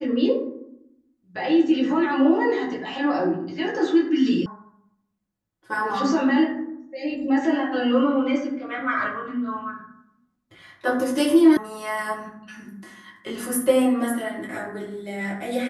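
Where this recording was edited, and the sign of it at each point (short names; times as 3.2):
4.46 sound cut off
11.57 sound cut off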